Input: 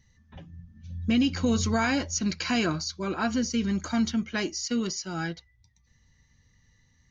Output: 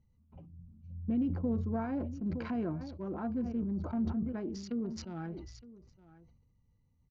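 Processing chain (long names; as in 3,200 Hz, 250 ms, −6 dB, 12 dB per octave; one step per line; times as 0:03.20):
adaptive Wiener filter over 25 samples
treble cut that deepens with the level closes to 760 Hz, closed at −27 dBFS
on a send: single-tap delay 915 ms −19 dB
on the sum: level that may fall only so fast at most 48 dB per second
level −7.5 dB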